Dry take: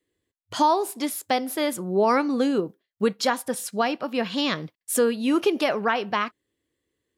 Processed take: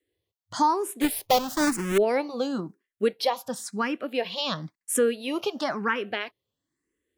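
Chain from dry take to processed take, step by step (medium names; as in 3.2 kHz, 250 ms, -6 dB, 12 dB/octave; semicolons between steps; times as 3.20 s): 1.01–1.98 s: square wave that keeps the level; barber-pole phaser +0.98 Hz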